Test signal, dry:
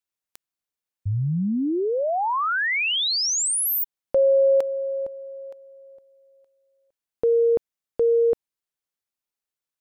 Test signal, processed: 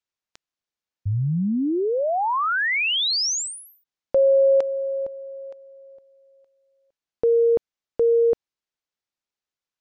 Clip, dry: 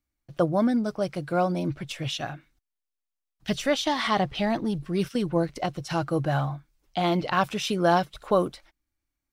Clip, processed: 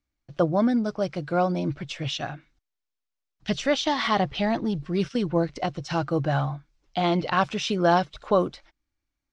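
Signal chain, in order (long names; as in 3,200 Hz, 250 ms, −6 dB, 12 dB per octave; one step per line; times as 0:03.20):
low-pass filter 6,700 Hz 24 dB per octave
level +1 dB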